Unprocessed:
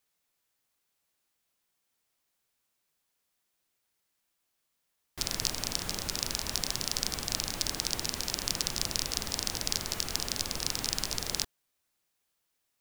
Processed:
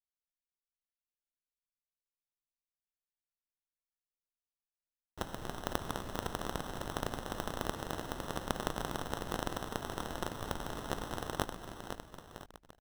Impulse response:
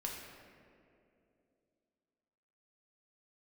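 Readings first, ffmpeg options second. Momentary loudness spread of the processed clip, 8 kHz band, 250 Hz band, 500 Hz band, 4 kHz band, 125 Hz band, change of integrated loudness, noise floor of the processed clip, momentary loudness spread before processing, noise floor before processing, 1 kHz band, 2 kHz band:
9 LU, -16.5 dB, +2.0 dB, +4.0 dB, -14.5 dB, -0.5 dB, -8.5 dB, under -85 dBFS, 2 LU, -80 dBFS, +4.0 dB, -3.0 dB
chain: -af "aecho=1:1:507|1014|1521|2028|2535|3042:0.631|0.29|0.134|0.0614|0.0283|0.013,anlmdn=0.00398,acrusher=samples=19:mix=1:aa=0.000001,volume=0.447"

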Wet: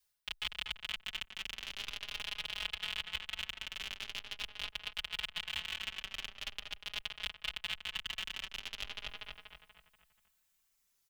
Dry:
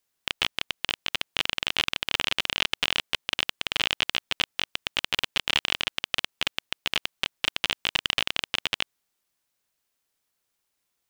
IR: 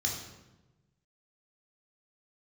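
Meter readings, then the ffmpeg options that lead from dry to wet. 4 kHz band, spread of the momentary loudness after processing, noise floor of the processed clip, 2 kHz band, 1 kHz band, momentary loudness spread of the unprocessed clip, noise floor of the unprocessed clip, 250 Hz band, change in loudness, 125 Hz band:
-12.0 dB, 5 LU, -77 dBFS, -12.5 dB, -15.0 dB, 4 LU, -79 dBFS, -18.5 dB, -12.5 dB, -12.5 dB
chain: -filter_complex "[0:a]aecho=1:1:4.7:0.56,asplit=2[s0][s1];[s1]adelay=241,lowpass=f=3000:p=1,volume=0.447,asplit=2[s2][s3];[s3]adelay=241,lowpass=f=3000:p=1,volume=0.49,asplit=2[s4][s5];[s5]adelay=241,lowpass=f=3000:p=1,volume=0.49,asplit=2[s6][s7];[s7]adelay=241,lowpass=f=3000:p=1,volume=0.49,asplit=2[s8][s9];[s9]adelay=241,lowpass=f=3000:p=1,volume=0.49,asplit=2[s10][s11];[s11]adelay=241,lowpass=f=3000:p=1,volume=0.49[s12];[s0][s2][s4][s6][s8][s10][s12]amix=inputs=7:normalize=0,acrossover=split=140[s13][s14];[s13]acontrast=82[s15];[s15][s14]amix=inputs=2:normalize=0,equalizer=f=300:w=0.51:g=-10,areverse,acompressor=threshold=0.0158:ratio=5,areverse,highshelf=f=12000:g=3,asplit=2[s16][s17];[s17]adelay=4.4,afreqshift=0.43[s18];[s16][s18]amix=inputs=2:normalize=1,volume=1.33"

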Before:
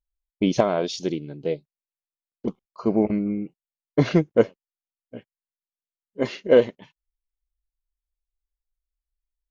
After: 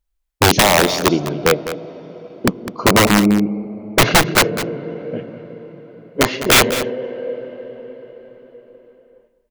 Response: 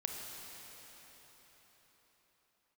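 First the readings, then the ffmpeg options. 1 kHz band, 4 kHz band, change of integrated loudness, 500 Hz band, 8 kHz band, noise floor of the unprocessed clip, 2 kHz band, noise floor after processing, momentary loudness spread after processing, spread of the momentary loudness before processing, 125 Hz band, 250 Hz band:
+16.0 dB, +20.0 dB, +8.5 dB, +4.0 dB, no reading, under -85 dBFS, +19.5 dB, -66 dBFS, 20 LU, 15 LU, +8.0 dB, +6.5 dB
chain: -filter_complex "[0:a]asplit=2[s0][s1];[1:a]atrim=start_sample=2205,lowpass=3200[s2];[s1][s2]afir=irnorm=-1:irlink=0,volume=0.335[s3];[s0][s3]amix=inputs=2:normalize=0,aeval=exprs='(mod(4.73*val(0)+1,2)-1)/4.73':c=same,aecho=1:1:204:0.237,volume=2.82"

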